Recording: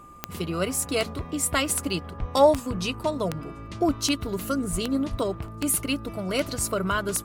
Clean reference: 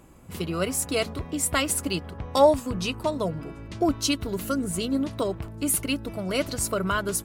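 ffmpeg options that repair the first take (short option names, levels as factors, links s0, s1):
-filter_complex "[0:a]adeclick=t=4,bandreject=f=1200:w=30,asplit=3[s0][s1][s2];[s0]afade=t=out:st=2.19:d=0.02[s3];[s1]highpass=f=140:w=0.5412,highpass=f=140:w=1.3066,afade=t=in:st=2.19:d=0.02,afade=t=out:st=2.31:d=0.02[s4];[s2]afade=t=in:st=2.31:d=0.02[s5];[s3][s4][s5]amix=inputs=3:normalize=0,asplit=3[s6][s7][s8];[s6]afade=t=out:st=4.71:d=0.02[s9];[s7]highpass=f=140:w=0.5412,highpass=f=140:w=1.3066,afade=t=in:st=4.71:d=0.02,afade=t=out:st=4.83:d=0.02[s10];[s8]afade=t=in:st=4.83:d=0.02[s11];[s9][s10][s11]amix=inputs=3:normalize=0,asplit=3[s12][s13][s14];[s12]afade=t=out:st=5.1:d=0.02[s15];[s13]highpass=f=140:w=0.5412,highpass=f=140:w=1.3066,afade=t=in:st=5.1:d=0.02,afade=t=out:st=5.22:d=0.02[s16];[s14]afade=t=in:st=5.22:d=0.02[s17];[s15][s16][s17]amix=inputs=3:normalize=0"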